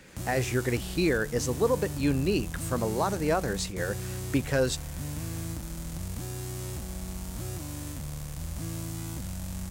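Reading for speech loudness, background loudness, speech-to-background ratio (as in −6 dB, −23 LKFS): −29.0 LKFS, −36.5 LKFS, 7.5 dB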